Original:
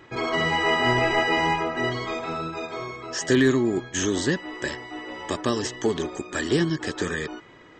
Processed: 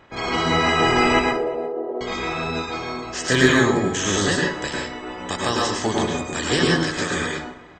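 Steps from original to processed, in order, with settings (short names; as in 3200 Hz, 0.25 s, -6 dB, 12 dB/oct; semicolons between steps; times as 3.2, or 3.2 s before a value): spectral limiter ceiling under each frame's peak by 14 dB; 1.19–2.01 Butterworth band-pass 480 Hz, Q 1.5; outdoor echo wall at 61 m, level -22 dB; plate-style reverb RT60 0.52 s, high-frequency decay 0.65×, pre-delay 90 ms, DRR -2 dB; mismatched tape noise reduction decoder only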